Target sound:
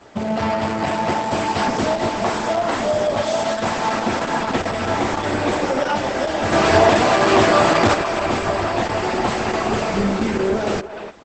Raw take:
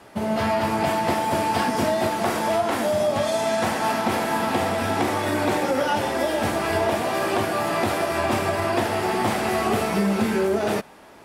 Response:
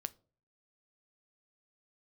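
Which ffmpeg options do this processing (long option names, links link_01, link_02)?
-filter_complex "[0:a]asplit=3[link_01][link_02][link_03];[link_01]afade=type=out:start_time=6.51:duration=0.02[link_04];[link_02]acontrast=87,afade=type=in:start_time=6.51:duration=0.02,afade=type=out:start_time=7.93:duration=0.02[link_05];[link_03]afade=type=in:start_time=7.93:duration=0.02[link_06];[link_04][link_05][link_06]amix=inputs=3:normalize=0,asplit=2[link_07][link_08];[link_08]adelay=300,highpass=300,lowpass=3400,asoftclip=type=hard:threshold=-15dB,volume=-9dB[link_09];[link_07][link_09]amix=inputs=2:normalize=0,volume=2.5dB" -ar 48000 -c:a libopus -b:a 10k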